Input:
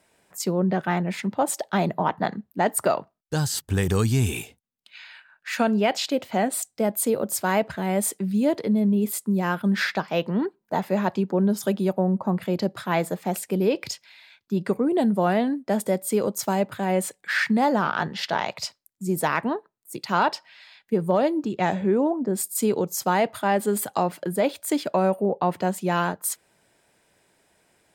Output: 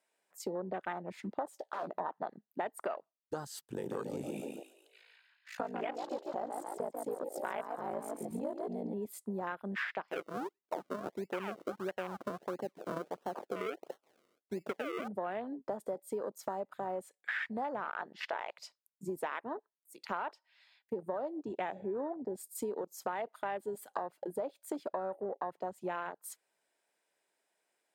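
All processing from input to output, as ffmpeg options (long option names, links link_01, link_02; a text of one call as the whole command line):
ffmpeg -i in.wav -filter_complex "[0:a]asettb=1/sr,asplit=3[link_01][link_02][link_03];[link_01]atrim=end=1.494[link_04];[link_02]atrim=start=1.49:end=2,asetpts=PTS-STARTPTS,afade=type=in:duration=0.004:curve=qsin,afade=type=out:start_time=0.506:duration=0.004:curve=qsin,aeval=exprs='0.119*(abs(mod(val(0)/0.119+3,4)-2)-1)':channel_layout=same,acompressor=threshold=-29dB:ratio=2.5:attack=3.2:release=140:knee=1:detection=peak,asplit=2[link_05][link_06];[link_06]adelay=16,volume=-10.5dB[link_07];[link_05][link_07]amix=inputs=2:normalize=0,atrim=end_sample=22491[link_08];[link_03]atrim=start=1.996[link_09];[link_04][link_08]acrossfade=duration=0.004:curve1=hsin:curve2=qsin[link_10];[link_10][link_09]acrossfade=duration=0.004:curve1=qsin:curve2=hsin,asettb=1/sr,asplit=3[link_11][link_12][link_13];[link_11]atrim=end=3.634[link_14];[link_12]atrim=start=3.63:end=8.94,asetpts=PTS-STARTPTS,afade=type=in:duration=0.004:curve=qsin,afade=type=out:start_time=5.306:duration=0.004:curve=qsin,aeval=exprs='val(0)*sin(2*PI*27*n/s)':channel_layout=same,asplit=7[link_15][link_16][link_17][link_18][link_19][link_20][link_21];[link_16]adelay=142,afreqshift=60,volume=-6dB[link_22];[link_17]adelay=284,afreqshift=120,volume=-12.4dB[link_23];[link_18]adelay=426,afreqshift=180,volume=-18.8dB[link_24];[link_19]adelay=568,afreqshift=240,volume=-25.1dB[link_25];[link_20]adelay=710,afreqshift=300,volume=-31.5dB[link_26];[link_21]adelay=852,afreqshift=360,volume=-37.9dB[link_27];[link_15][link_22][link_23][link_24][link_25][link_26][link_27]amix=inputs=7:normalize=0,atrim=end_sample=234171[link_28];[link_13]atrim=start=8.936[link_29];[link_14][link_28]acrossfade=duration=0.004:curve1=hsin:curve2=qsin[link_30];[link_30][link_29]acrossfade=duration=0.004:curve1=qsin:curve2=hsin,asettb=1/sr,asplit=3[link_31][link_32][link_33];[link_31]atrim=end=10.114[link_34];[link_32]atrim=start=10.11:end=15.08,asetpts=PTS-STARTPTS,afade=type=in:duration=0.004:curve=qsin,afade=type=out:start_time=4.966:duration=0.004:curve=qsin,highpass=frequency=120:poles=1,acrusher=samples=36:mix=1:aa=0.000001:lfo=1:lforange=36:lforate=1.5[link_35];[link_33]atrim=start=15.076[link_36];[link_34][link_35]acrossfade=duration=0.004:curve1=hsin:curve2=qsin[link_37];[link_37][link_36]acrossfade=duration=0.004:curve1=qsin:curve2=hsin,highpass=400,afwtdn=0.0316,acompressor=threshold=-35dB:ratio=6" out.wav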